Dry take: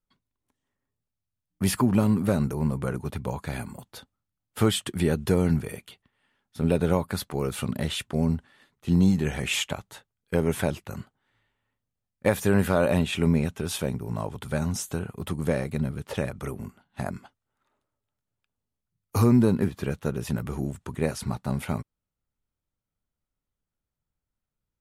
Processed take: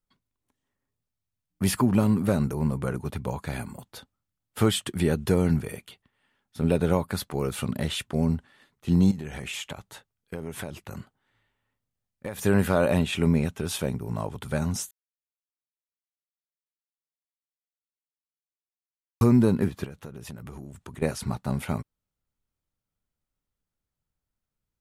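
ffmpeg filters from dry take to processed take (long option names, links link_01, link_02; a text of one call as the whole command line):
ffmpeg -i in.wav -filter_complex "[0:a]asettb=1/sr,asplit=3[link_01][link_02][link_03];[link_01]atrim=end=9.114[link_04];[link_02]atrim=start=9.11:end=12.39,asetpts=PTS-STARTPTS,afade=type=in:duration=0.004:curve=qsin,afade=type=out:start_time=3.276:duration=0.004:curve=qsin,acompressor=threshold=-32dB:ratio=4:attack=3.2:release=140:knee=1:detection=peak[link_05];[link_03]atrim=start=12.386[link_06];[link_04][link_05]acrossfade=duration=0.004:curve1=hsin:curve2=qsin[link_07];[link_07][link_06]acrossfade=duration=0.004:curve1=qsin:curve2=hsin,asettb=1/sr,asplit=3[link_08][link_09][link_10];[link_08]atrim=end=19.844[link_11];[link_09]atrim=start=19.84:end=21.02,asetpts=PTS-STARTPTS,afade=type=in:duration=0.004:curve=qsin,afade=type=out:start_time=1.176:duration=0.004:curve=qsin,acompressor=threshold=-37dB:ratio=5:attack=3.2:release=140:knee=1:detection=peak[link_12];[link_10]atrim=start=21.016[link_13];[link_11][link_12]acrossfade=duration=0.004:curve1=hsin:curve2=qsin[link_14];[link_14][link_13]acrossfade=duration=0.004:curve1=qsin:curve2=hsin,asplit=3[link_15][link_16][link_17];[link_15]atrim=end=14.91,asetpts=PTS-STARTPTS,afade=type=out:start_time=14.906:duration=0.004:curve=hsin[link_18];[link_16]atrim=start=14.91:end=19.21,asetpts=PTS-STARTPTS,volume=0[link_19];[link_17]atrim=start=19.21,asetpts=PTS-STARTPTS,afade=type=in:duration=0.004:curve=hsin[link_20];[link_18][link_19][link_20]concat=n=3:v=0:a=1" out.wav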